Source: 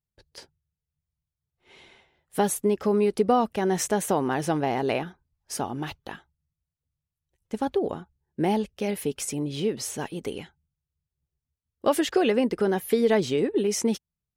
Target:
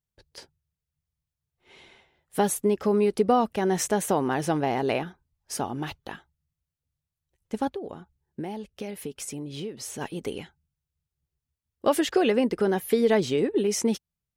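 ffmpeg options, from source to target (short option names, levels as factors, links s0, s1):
-filter_complex "[0:a]asplit=3[s0][s1][s2];[s0]afade=t=out:st=7.68:d=0.02[s3];[s1]acompressor=threshold=0.0224:ratio=4,afade=t=in:st=7.68:d=0.02,afade=t=out:st=10:d=0.02[s4];[s2]afade=t=in:st=10:d=0.02[s5];[s3][s4][s5]amix=inputs=3:normalize=0"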